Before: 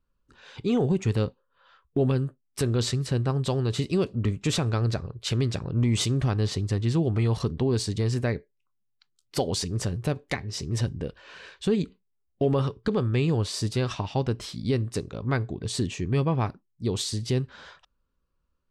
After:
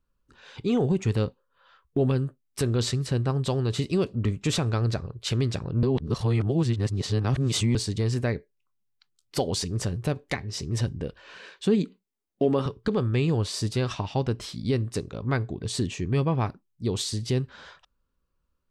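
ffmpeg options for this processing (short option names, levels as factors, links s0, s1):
-filter_complex "[0:a]asettb=1/sr,asplit=3[s0][s1][s2];[s0]atrim=end=11.374[s3];[s1]atrim=start=11.37:end=12.66,asetpts=PTS-STARTPTS,afade=t=in:d=0.004:c=qsin,afade=t=out:st=1.286:d=0.004:c=qsin,lowshelf=f=130:t=q:w=1.5:g=-14[s4];[s2]atrim=start=12.656[s5];[s3][s4]acrossfade=d=0.004:c1=hsin:c2=qsin[s6];[s6][s5]acrossfade=d=0.004:c1=qsin:c2=hsin,asplit=3[s7][s8][s9];[s7]atrim=end=5.832[s10];[s8]atrim=start=5.828:end=7.752,asetpts=PTS-STARTPTS,areverse[s11];[s9]atrim=start=7.748[s12];[s10][s11]acrossfade=d=0.004:c1=hsin:c2=hsin[s13];[s13][s12]acrossfade=d=0.004:c1=hsin:c2=hsin"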